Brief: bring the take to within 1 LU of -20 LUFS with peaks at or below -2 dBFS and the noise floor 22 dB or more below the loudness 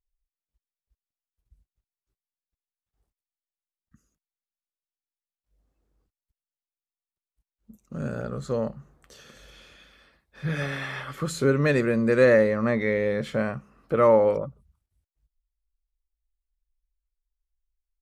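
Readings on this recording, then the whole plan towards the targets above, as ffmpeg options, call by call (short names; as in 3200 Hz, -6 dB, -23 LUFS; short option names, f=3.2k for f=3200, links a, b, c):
loudness -24.0 LUFS; peak -7.0 dBFS; loudness target -20.0 LUFS
-> -af "volume=4dB"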